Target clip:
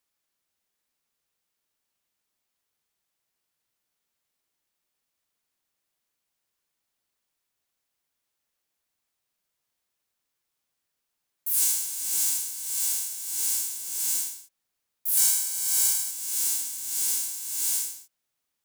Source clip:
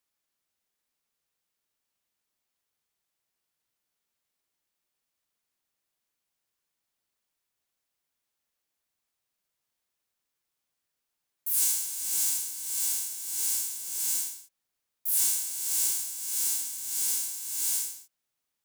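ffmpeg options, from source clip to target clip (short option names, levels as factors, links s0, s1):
-filter_complex "[0:a]asettb=1/sr,asplit=3[s0][s1][s2];[s0]atrim=end=12.434[s3];[s1]atrim=start=12.43:end=13.31,asetpts=PTS-STARTPTS,afade=t=in:d=0.004:c=qsin,afade=t=out:st=0.876:d=0.004:c=qsin,highpass=f=290:p=1[s4];[s2]atrim=start=13.306[s5];[s3][s4]acrossfade=d=0.004:c1=hsin:c2=qsin[s6];[s6][s5]acrossfade=d=0.004:c1=qsin:c2=hsin,asettb=1/sr,asplit=3[s7][s8][s9];[s7]atrim=end=15.174[s10];[s8]atrim=start=15.17:end=16.11,asetpts=PTS-STARTPTS,afade=t=in:d=0.004:c=qsin,afade=t=out:st=0.936:d=0.004:c=qsin,aecho=1:1:1.3:0.8,atrim=end_sample=41454[s11];[s9]atrim=start=16.106[s12];[s10][s11]acrossfade=d=0.004:c1=hsin:c2=qsin[s13];[s13][s12]acrossfade=d=0.004:c1=qsin:c2=hsin,volume=1.26"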